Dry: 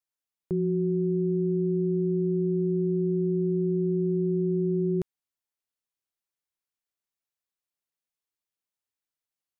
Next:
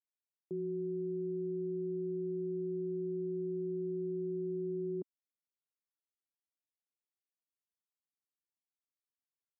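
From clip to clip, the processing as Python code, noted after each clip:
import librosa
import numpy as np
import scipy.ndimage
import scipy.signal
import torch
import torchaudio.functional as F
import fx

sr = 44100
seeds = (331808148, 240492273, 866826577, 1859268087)

y = fx.ladder_bandpass(x, sr, hz=330.0, resonance_pct=40)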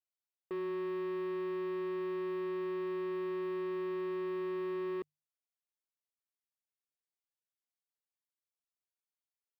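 y = fx.low_shelf_res(x, sr, hz=340.0, db=-7.0, q=1.5)
y = fx.hum_notches(y, sr, base_hz=50, count=3)
y = fx.leveller(y, sr, passes=3)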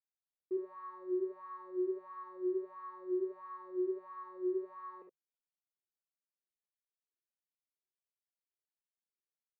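y = fx.wiener(x, sr, points=41)
y = fx.wah_lfo(y, sr, hz=1.5, low_hz=350.0, high_hz=1200.0, q=9.7)
y = fx.room_early_taps(y, sr, ms=(55, 72), db=(-7.0, -6.5))
y = F.gain(torch.from_numpy(y), 6.5).numpy()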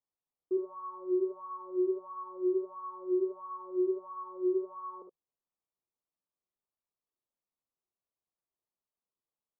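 y = scipy.signal.sosfilt(scipy.signal.ellip(4, 1.0, 40, 1200.0, 'lowpass', fs=sr, output='sos'), x)
y = F.gain(torch.from_numpy(y), 5.5).numpy()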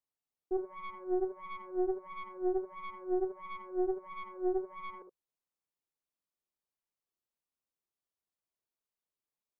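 y = fx.tracing_dist(x, sr, depth_ms=0.22)
y = F.gain(torch.from_numpy(y), -2.5).numpy()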